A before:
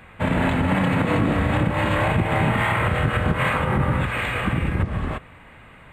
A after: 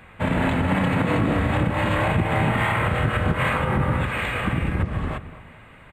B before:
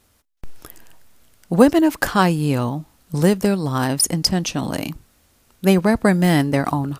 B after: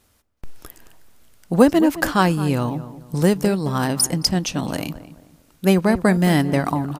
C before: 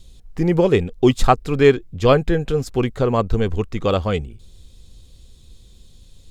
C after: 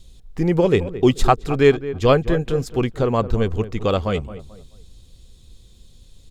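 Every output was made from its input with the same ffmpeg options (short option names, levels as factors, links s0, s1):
-filter_complex "[0:a]asplit=2[s0][s1];[s1]adelay=218,lowpass=f=1400:p=1,volume=0.211,asplit=2[s2][s3];[s3]adelay=218,lowpass=f=1400:p=1,volume=0.35,asplit=2[s4][s5];[s5]adelay=218,lowpass=f=1400:p=1,volume=0.35[s6];[s0][s2][s4][s6]amix=inputs=4:normalize=0,volume=0.891"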